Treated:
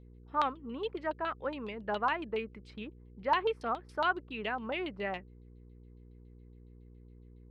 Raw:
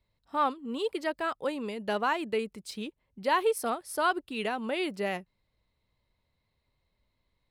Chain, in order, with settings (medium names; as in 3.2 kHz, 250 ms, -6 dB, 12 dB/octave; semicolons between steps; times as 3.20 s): LFO low-pass saw down 7.2 Hz 880–3800 Hz; mains buzz 60 Hz, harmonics 8, -48 dBFS -6 dB/octave; trim -6 dB